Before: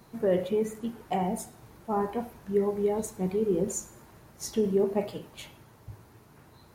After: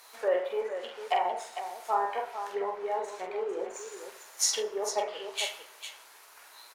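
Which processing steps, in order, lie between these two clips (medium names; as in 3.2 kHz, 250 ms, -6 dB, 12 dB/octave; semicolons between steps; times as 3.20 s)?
low-pass that closes with the level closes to 1.3 kHz, closed at -25.5 dBFS; high-pass 480 Hz 24 dB/octave; tilt shelf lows -9.5 dB, about 870 Hz; in parallel at -3 dB: crossover distortion -54 dBFS; on the sum: multi-tap echo 45/450 ms -4.5/-9.5 dB; on a send at -15.5 dB: reverberation RT60 1.1 s, pre-delay 7 ms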